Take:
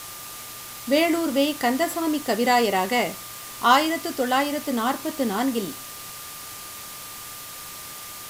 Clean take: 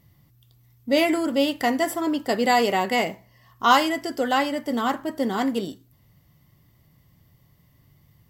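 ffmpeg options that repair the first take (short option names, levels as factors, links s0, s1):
-af "bandreject=f=1200:w=30,afwtdn=0.014"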